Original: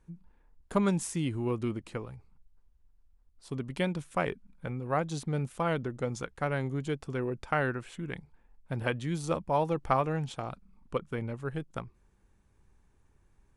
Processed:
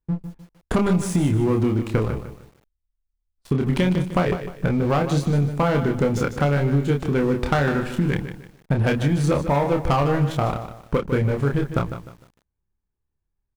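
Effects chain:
high-shelf EQ 4,200 Hz −9 dB
leveller curve on the samples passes 3
noise gate with hold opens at −44 dBFS
low-shelf EQ 170 Hz +5 dB
double-tracking delay 28 ms −4 dB
downward compressor, threshold −24 dBFS, peak gain reduction 12 dB
feedback echo at a low word length 152 ms, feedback 35%, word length 9 bits, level −10 dB
level +6.5 dB

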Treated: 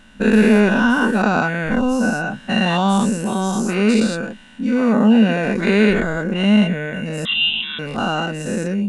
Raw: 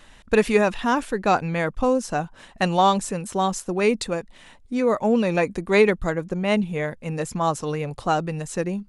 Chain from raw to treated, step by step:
every bin's largest magnitude spread in time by 240 ms
0:07.25–0:07.79: voice inversion scrambler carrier 3,800 Hz
hollow resonant body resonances 220/1,500/2,800 Hz, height 16 dB, ringing for 55 ms
level −7 dB

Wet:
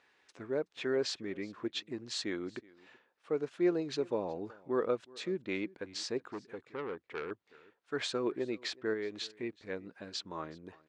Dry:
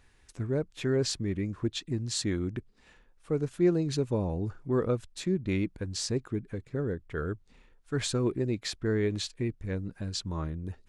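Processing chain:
0:08.93–0:09.43: downward compressor 3 to 1, threshold −31 dBFS, peak gain reduction 6 dB
band-pass filter 400–4,200 Hz
single-tap delay 372 ms −23.5 dB
0:06.31–0:07.31: saturating transformer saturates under 1,600 Hz

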